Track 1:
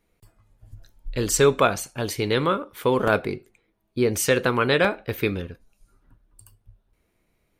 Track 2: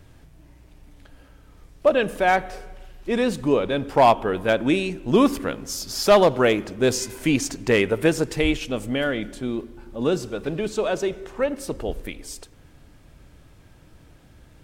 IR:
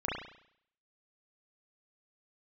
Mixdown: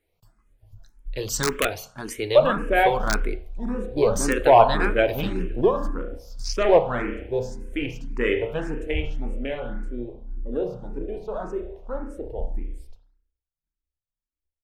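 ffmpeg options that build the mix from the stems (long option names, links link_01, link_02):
-filter_complex "[0:a]bandreject=frequency=60:width_type=h:width=6,bandreject=frequency=120:width_type=h:width=6,bandreject=frequency=180:width_type=h:width=6,bandreject=frequency=240:width_type=h:width=6,aeval=exprs='(mod(2.37*val(0)+1,2)-1)/2.37':channel_layout=same,volume=-2dB,asplit=3[link_01][link_02][link_03];[link_02]volume=-22.5dB[link_04];[1:a]agate=range=-30dB:threshold=-43dB:ratio=16:detection=peak,afwtdn=0.0398,adelay=500,volume=1.5dB,asplit=2[link_05][link_06];[link_06]volume=-14.5dB[link_07];[link_03]apad=whole_len=667477[link_08];[link_05][link_08]sidechaingate=range=-8dB:threshold=-55dB:ratio=16:detection=peak[link_09];[2:a]atrim=start_sample=2205[link_10];[link_04][link_07]amix=inputs=2:normalize=0[link_11];[link_11][link_10]afir=irnorm=-1:irlink=0[link_12];[link_01][link_09][link_12]amix=inputs=3:normalize=0,asubboost=boost=5:cutoff=57,asplit=2[link_13][link_14];[link_14]afreqshift=1.8[link_15];[link_13][link_15]amix=inputs=2:normalize=1"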